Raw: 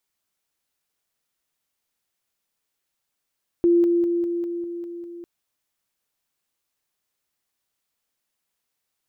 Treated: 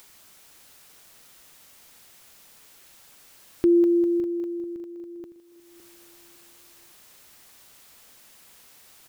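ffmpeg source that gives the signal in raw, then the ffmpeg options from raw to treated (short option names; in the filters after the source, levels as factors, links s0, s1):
-f lavfi -i "aevalsrc='pow(10,(-13.5-3*floor(t/0.2))/20)*sin(2*PI*344*t)':d=1.6:s=44100"
-filter_complex "[0:a]acompressor=mode=upward:threshold=0.0282:ratio=2.5,asplit=2[s0][s1];[s1]aecho=0:1:560|1120|1680:0.237|0.0759|0.0243[s2];[s0][s2]amix=inputs=2:normalize=0"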